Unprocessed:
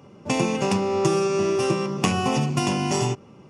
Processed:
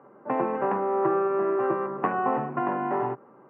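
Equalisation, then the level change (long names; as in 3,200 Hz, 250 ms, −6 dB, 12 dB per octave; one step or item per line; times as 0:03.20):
Chebyshev band-pass filter 130–1,700 Hz, order 4
parametric band 160 Hz −13.5 dB 1 octave
low-shelf EQ 340 Hz −7 dB
+3.0 dB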